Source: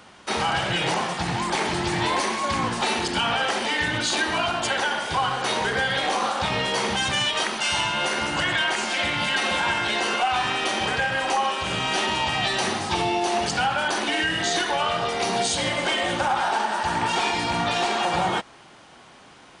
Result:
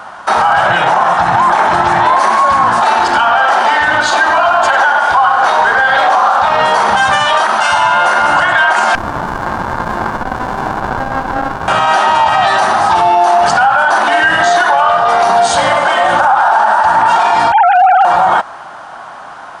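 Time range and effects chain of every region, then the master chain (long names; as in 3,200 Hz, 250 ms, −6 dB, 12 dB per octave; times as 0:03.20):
0:00.66–0:02.15: high-shelf EQ 8,200 Hz −9 dB + notch filter 4,600 Hz, Q 10
0:02.87–0:06.61: low-pass filter 8,300 Hz + parametric band 140 Hz −7.5 dB 0.89 octaves + feedback echo at a low word length 95 ms, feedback 55%, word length 8 bits, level −12.5 dB
0:08.95–0:11.68: high-frequency loss of the air 220 metres + windowed peak hold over 65 samples
0:17.52–0:18.05: three sine waves on the formant tracks + hard clipping −19 dBFS
whole clip: flat-topped bell 1,000 Hz +15 dB; boost into a limiter +8.5 dB; level −1 dB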